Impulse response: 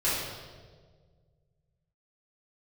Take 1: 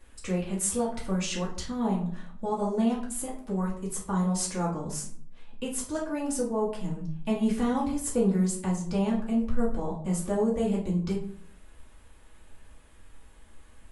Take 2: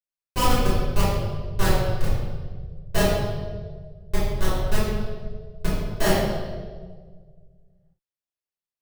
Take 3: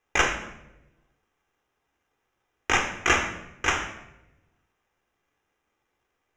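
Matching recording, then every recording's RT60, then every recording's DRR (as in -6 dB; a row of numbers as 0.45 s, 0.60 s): 2; 0.55 s, 1.6 s, 0.95 s; -6.5 dB, -11.5 dB, 4.5 dB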